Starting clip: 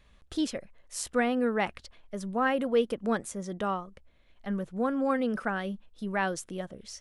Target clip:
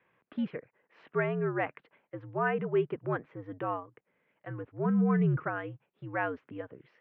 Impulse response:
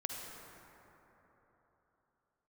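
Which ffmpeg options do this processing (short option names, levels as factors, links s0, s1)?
-filter_complex "[0:a]crystalizer=i=1:c=0,asplit=3[s0][s1][s2];[s0]afade=t=out:st=4.84:d=0.02[s3];[s1]asubboost=boost=7.5:cutoff=240,afade=t=in:st=4.84:d=0.02,afade=t=out:st=5.44:d=0.02[s4];[s2]afade=t=in:st=5.44:d=0.02[s5];[s3][s4][s5]amix=inputs=3:normalize=0,highpass=f=240:t=q:w=0.5412,highpass=f=240:t=q:w=1.307,lowpass=f=2500:t=q:w=0.5176,lowpass=f=2500:t=q:w=0.7071,lowpass=f=2500:t=q:w=1.932,afreqshift=-77,volume=0.75"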